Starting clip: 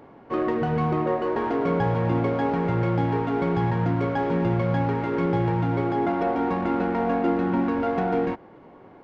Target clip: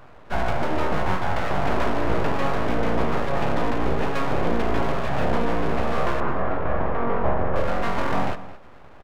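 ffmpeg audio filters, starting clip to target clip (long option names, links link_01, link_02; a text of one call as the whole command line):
ffmpeg -i in.wav -filter_complex "[0:a]equalizer=frequency=320:width_type=o:width=0.77:gain=2.5,aeval=exprs='abs(val(0))':channel_layout=same,asettb=1/sr,asplit=3[link_01][link_02][link_03];[link_01]atrim=end=6.204[link_04];[link_02]atrim=start=6.2:end=7.56,asetpts=PTS-STARTPTS,afade=type=in:duration=0.004:curve=qsin,afade=type=out:start_time=1.356:duration=0.004:curve=qsin,lowpass=1600[link_05];[link_03]atrim=start=7.556[link_06];[link_04][link_05]acrossfade=duration=0.004:curve1=hsin:curve2=qsin[link_07];[link_07][link_06]acrossfade=duration=0.004:curve1=qsin:curve2=hsin,asplit=2[link_08][link_09];[link_09]adelay=215.7,volume=-15dB,highshelf=frequency=4000:gain=-4.85[link_10];[link_08][link_10]amix=inputs=2:normalize=0,volume=2.5dB" out.wav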